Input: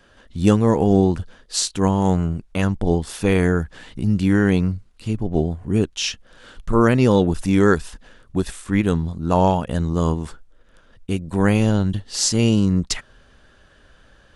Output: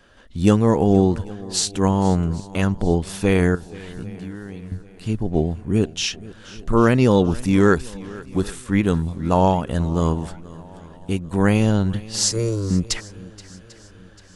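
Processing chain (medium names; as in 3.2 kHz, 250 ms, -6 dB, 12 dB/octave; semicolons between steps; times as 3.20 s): 3.55–4.72 s: compression 10:1, threshold -31 dBFS, peak gain reduction 19 dB; 12.31–12.71 s: static phaser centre 790 Hz, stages 6; shuffle delay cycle 794 ms, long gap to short 1.5:1, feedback 40%, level -20 dB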